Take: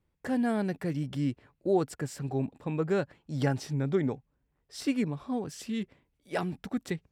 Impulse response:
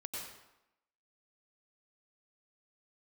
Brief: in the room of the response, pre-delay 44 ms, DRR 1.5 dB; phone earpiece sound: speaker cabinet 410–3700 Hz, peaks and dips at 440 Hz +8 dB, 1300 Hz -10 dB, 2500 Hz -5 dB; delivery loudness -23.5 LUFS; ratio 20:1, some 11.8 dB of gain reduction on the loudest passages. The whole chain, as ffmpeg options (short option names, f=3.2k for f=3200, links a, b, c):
-filter_complex "[0:a]acompressor=threshold=-33dB:ratio=20,asplit=2[a][b];[1:a]atrim=start_sample=2205,adelay=44[c];[b][c]afir=irnorm=-1:irlink=0,volume=-1dB[d];[a][d]amix=inputs=2:normalize=0,highpass=410,equalizer=f=440:t=q:w=4:g=8,equalizer=f=1.3k:t=q:w=4:g=-10,equalizer=f=2.5k:t=q:w=4:g=-5,lowpass=f=3.7k:w=0.5412,lowpass=f=3.7k:w=1.3066,volume=17.5dB"